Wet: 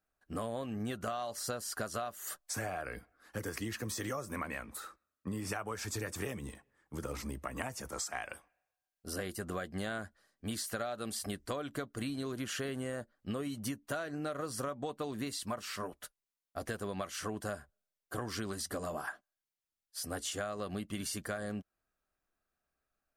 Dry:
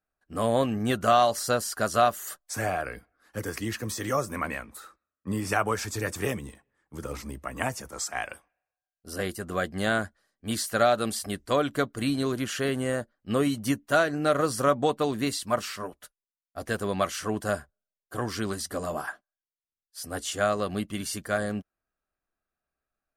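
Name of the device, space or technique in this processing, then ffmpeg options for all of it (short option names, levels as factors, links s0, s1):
serial compression, peaks first: -af "acompressor=threshold=0.0251:ratio=6,acompressor=threshold=0.00794:ratio=1.5,volume=1.12"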